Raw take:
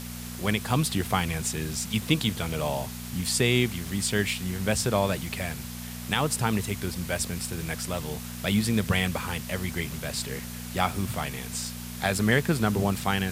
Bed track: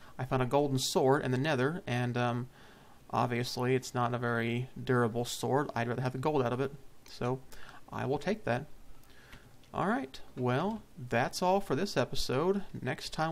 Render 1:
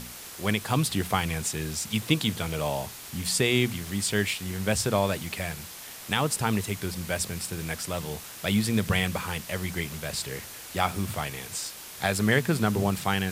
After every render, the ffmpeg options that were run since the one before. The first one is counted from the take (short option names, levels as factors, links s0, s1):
-af "bandreject=f=60:t=h:w=4,bandreject=f=120:t=h:w=4,bandreject=f=180:t=h:w=4,bandreject=f=240:t=h:w=4"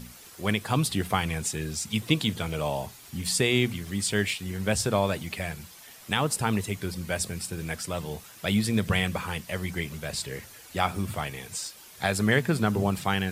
-af "afftdn=nr=9:nf=-43"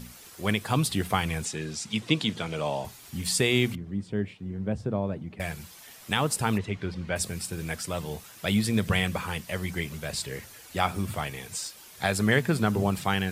-filter_complex "[0:a]asettb=1/sr,asplit=3[s0][s1][s2];[s0]atrim=end=1.454[s3];[s1]atrim=start=1.45:end=2.85,asetpts=PTS-STARTPTS,afade=t=in:d=0.004:c=qsin,afade=t=out:st=1.396:d=0.004:c=qsin,highpass=140,lowpass=7000[s4];[s2]atrim=start=2.846[s5];[s3][s4]acrossfade=d=0.004:c1=hsin:c2=qsin[s6];[s6][s5]acrossfade=d=0.004:c1=qsin:c2=hsin,asettb=1/sr,asplit=3[s7][s8][s9];[s7]atrim=end=3.754[s10];[s8]atrim=start=3.75:end=5.4,asetpts=PTS-STARTPTS,afade=t=in:d=0.004:c=qsin,afade=t=out:st=1.646:d=0.004:c=qsin,bandpass=f=190:t=q:w=0.62[s11];[s9]atrim=start=5.396[s12];[s10][s11]acrossfade=d=0.004:c1=hsin:c2=qsin[s13];[s13][s12]acrossfade=d=0.004:c1=qsin:c2=hsin,asplit=3[s14][s15][s16];[s14]afade=t=out:st=6.57:d=0.02[s17];[s15]lowpass=3300,afade=t=in:st=6.57:d=0.02,afade=t=out:st=7.15:d=0.02[s18];[s16]afade=t=in:st=7.15:d=0.02[s19];[s17][s18][s19]amix=inputs=3:normalize=0"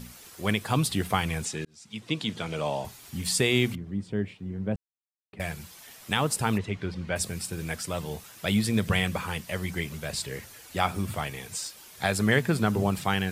-filter_complex "[0:a]asplit=4[s0][s1][s2][s3];[s0]atrim=end=1.65,asetpts=PTS-STARTPTS,afade=t=out:st=1.646:d=0.004:c=hsin[s4];[s1]atrim=start=1.65:end=4.76,asetpts=PTS-STARTPTS,afade=t=in:d=0.86,afade=t=out:st=3.106:d=0.004:c=hsin[s5];[s2]atrim=start=4.76:end=5.33,asetpts=PTS-STARTPTS,volume=0[s6];[s3]atrim=start=5.33,asetpts=PTS-STARTPTS,afade=t=in:d=0.004:c=hsin[s7];[s4][s5][s6][s7]concat=n=4:v=0:a=1"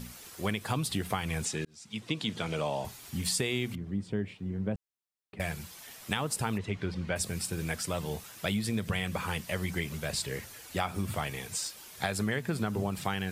-af "acompressor=threshold=0.0447:ratio=6"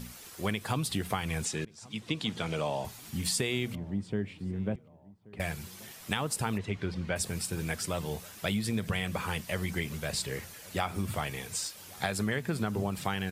-filter_complex "[0:a]asplit=2[s0][s1];[s1]adelay=1130,lowpass=f=1100:p=1,volume=0.0841,asplit=2[s2][s3];[s3]adelay=1130,lowpass=f=1100:p=1,volume=0.5,asplit=2[s4][s5];[s5]adelay=1130,lowpass=f=1100:p=1,volume=0.5,asplit=2[s6][s7];[s7]adelay=1130,lowpass=f=1100:p=1,volume=0.5[s8];[s0][s2][s4][s6][s8]amix=inputs=5:normalize=0"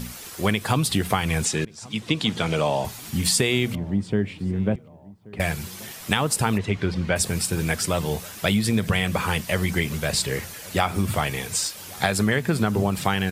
-af "volume=2.99"